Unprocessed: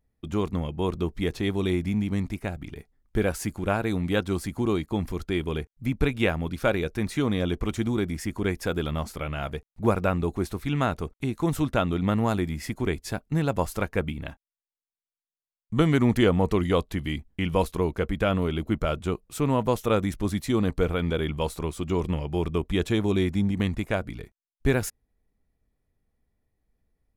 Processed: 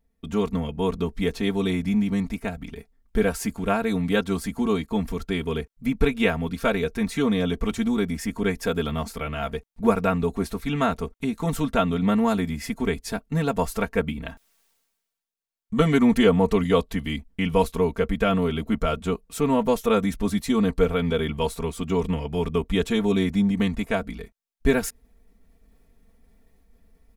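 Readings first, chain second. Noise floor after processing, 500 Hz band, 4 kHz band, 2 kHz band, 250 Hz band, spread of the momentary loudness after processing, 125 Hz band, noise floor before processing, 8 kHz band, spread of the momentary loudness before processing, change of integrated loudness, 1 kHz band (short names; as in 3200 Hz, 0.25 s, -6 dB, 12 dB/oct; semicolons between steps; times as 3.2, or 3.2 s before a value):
-75 dBFS, +3.0 dB, +2.5 dB, +2.5 dB, +3.5 dB, 8 LU, -1.0 dB, under -85 dBFS, +2.5 dB, 7 LU, +2.5 dB, +3.0 dB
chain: comb 4.4 ms, depth 90%; reverse; upward compressor, threshold -43 dBFS; reverse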